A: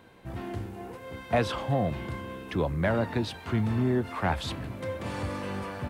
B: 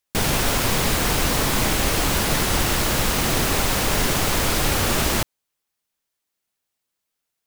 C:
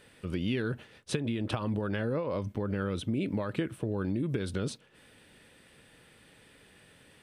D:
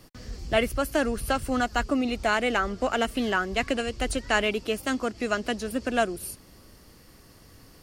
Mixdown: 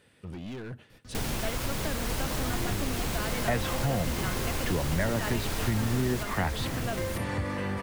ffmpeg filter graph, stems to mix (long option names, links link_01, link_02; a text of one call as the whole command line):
ffmpeg -i stem1.wav -i stem2.wav -i stem3.wav -i stem4.wav -filter_complex "[0:a]equalizer=frequency=1900:width=6.2:gain=9.5,adelay=2150,volume=3dB[link_01];[1:a]adelay=1000,volume=-9.5dB,asplit=2[link_02][link_03];[link_03]volume=-5dB[link_04];[2:a]highpass=52,asoftclip=type=hard:threshold=-32.5dB,volume=-5dB,asplit=2[link_05][link_06];[link_06]volume=-12dB[link_07];[3:a]adelay=900,volume=-8.5dB[link_08];[link_04][link_07]amix=inputs=2:normalize=0,aecho=0:1:947:1[link_09];[link_01][link_02][link_05][link_08][link_09]amix=inputs=5:normalize=0,lowshelf=frequency=180:gain=5,acompressor=threshold=-30dB:ratio=2" out.wav